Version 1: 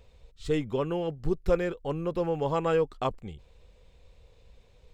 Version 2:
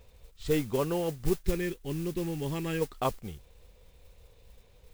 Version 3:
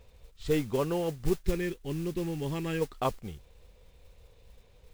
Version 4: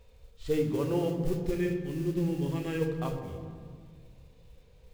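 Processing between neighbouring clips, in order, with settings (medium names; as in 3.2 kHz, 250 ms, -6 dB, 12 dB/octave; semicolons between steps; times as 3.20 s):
time-frequency box 1.35–2.82 s, 420–1600 Hz -13 dB; modulation noise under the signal 17 dB
treble shelf 9 kHz -6 dB
harmonic-percussive split percussive -9 dB; on a send at -4 dB: reverberation RT60 2.0 s, pre-delay 3 ms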